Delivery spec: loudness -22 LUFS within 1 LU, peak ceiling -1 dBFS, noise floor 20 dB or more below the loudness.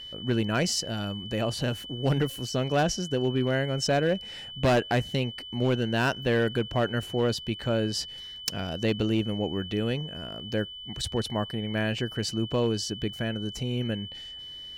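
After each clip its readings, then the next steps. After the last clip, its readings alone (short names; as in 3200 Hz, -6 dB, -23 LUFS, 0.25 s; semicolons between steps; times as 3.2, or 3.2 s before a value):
clipped 1.0%; flat tops at -18.0 dBFS; steady tone 3000 Hz; tone level -39 dBFS; loudness -28.5 LUFS; peak -18.0 dBFS; loudness target -22.0 LUFS
-> clip repair -18 dBFS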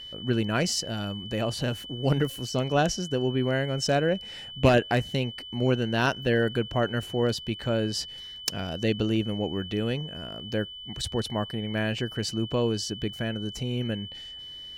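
clipped 0.0%; steady tone 3000 Hz; tone level -39 dBFS
-> notch 3000 Hz, Q 30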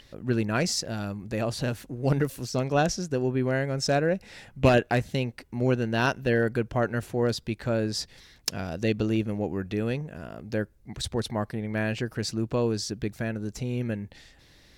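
steady tone none; loudness -28.0 LUFS; peak -8.5 dBFS; loudness target -22.0 LUFS
-> gain +6 dB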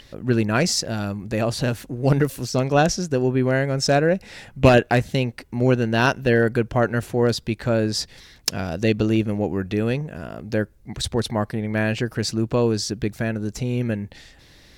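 loudness -22.0 LUFS; peak -2.5 dBFS; noise floor -51 dBFS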